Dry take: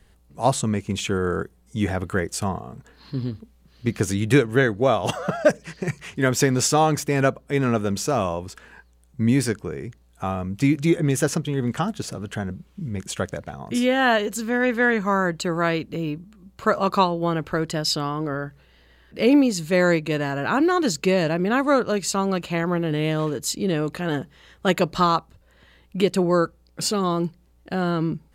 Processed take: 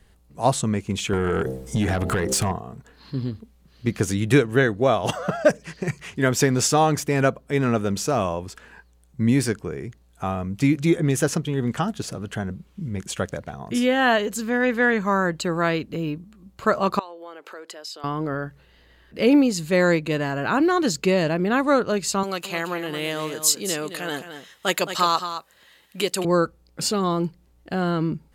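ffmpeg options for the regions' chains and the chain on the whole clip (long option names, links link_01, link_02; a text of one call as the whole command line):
ffmpeg -i in.wav -filter_complex "[0:a]asettb=1/sr,asplit=3[link_01][link_02][link_03];[link_01]atrim=end=1.134[link_04];[link_02]atrim=start=1.13:end=2.52,asetpts=PTS-STARTPTS,afade=type=in:duration=0.004:curve=qsin,afade=type=out:start_time=1.386:duration=0.004:curve=qsin,bandreject=frequency=65.12:width_type=h:width=4,bandreject=frequency=130.24:width_type=h:width=4,bandreject=frequency=195.36:width_type=h:width=4,bandreject=frequency=260.48:width_type=h:width=4,bandreject=frequency=325.6:width_type=h:width=4,bandreject=frequency=390.72:width_type=h:width=4,bandreject=frequency=455.84:width_type=h:width=4,bandreject=frequency=520.96:width_type=h:width=4,bandreject=frequency=586.08:width_type=h:width=4,bandreject=frequency=651.2:width_type=h:width=4,bandreject=frequency=716.32:width_type=h:width=4,bandreject=frequency=781.44:width_type=h:width=4,bandreject=frequency=846.56:width_type=h:width=4,acompressor=threshold=-33dB:ratio=8:attack=3.2:release=140:knee=1:detection=peak,aeval=exprs='0.15*sin(PI/2*4.47*val(0)/0.15)':channel_layout=same[link_05];[link_03]atrim=start=2.516[link_06];[link_04][link_05]acrossfade=duration=0.004:curve1=hsin:curve2=qsin[link_07];[link_07][link_06]acrossfade=duration=0.004:curve1=qsin:curve2=hsin,asettb=1/sr,asplit=3[link_08][link_09][link_10];[link_08]atrim=end=16.994[link_11];[link_09]atrim=start=16.99:end=18.04,asetpts=PTS-STARTPTS,afade=type=in:duration=0.004:curve=qsin,afade=type=out:start_time=1.046:duration=0.004:curve=qsin,acompressor=threshold=-32dB:ratio=10:attack=3.2:release=140:knee=1:detection=peak,highpass=frequency=390:width=0.5412,highpass=frequency=390:width=1.3066[link_12];[link_10]atrim=start=18.036[link_13];[link_11][link_12]acrossfade=duration=0.004:curve1=hsin:curve2=qsin[link_14];[link_14][link_13]acrossfade=duration=0.004:curve1=qsin:curve2=hsin,asettb=1/sr,asplit=3[link_15][link_16][link_17];[link_15]atrim=end=22.234[link_18];[link_16]atrim=start=22.23:end=26.25,asetpts=PTS-STARTPTS,afade=type=in:duration=0.004:curve=qsin,afade=type=out:start_time=4.016:duration=0.004:curve=qsin,highpass=frequency=590:poles=1,highshelf=frequency=4700:gain=11.5,aecho=1:1:218:0.316,atrim=end_sample=177282[link_19];[link_17]atrim=start=26.246[link_20];[link_18][link_19]acrossfade=duration=0.004:curve1=hsin:curve2=qsin[link_21];[link_21][link_20]acrossfade=duration=0.004:curve1=qsin:curve2=hsin" out.wav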